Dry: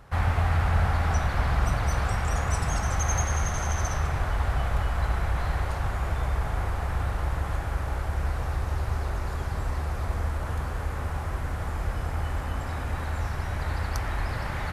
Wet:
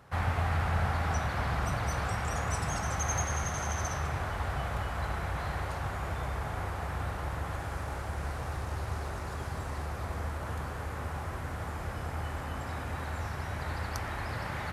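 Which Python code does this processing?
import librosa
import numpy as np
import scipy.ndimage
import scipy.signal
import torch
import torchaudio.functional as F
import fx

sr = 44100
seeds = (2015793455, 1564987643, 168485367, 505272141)

y = fx.cvsd(x, sr, bps=64000, at=(7.59, 9.86))
y = scipy.signal.sosfilt(scipy.signal.butter(2, 86.0, 'highpass', fs=sr, output='sos'), y)
y = F.gain(torch.from_numpy(y), -3.0).numpy()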